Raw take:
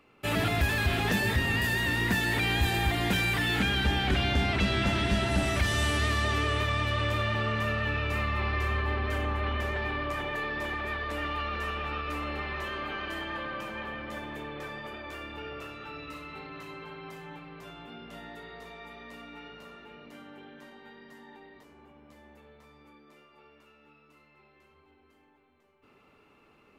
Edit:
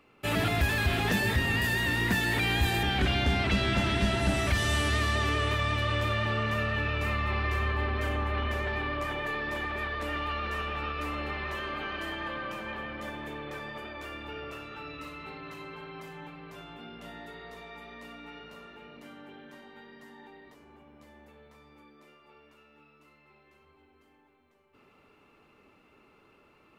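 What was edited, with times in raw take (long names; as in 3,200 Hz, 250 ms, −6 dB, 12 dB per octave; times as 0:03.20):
0:02.83–0:03.92: remove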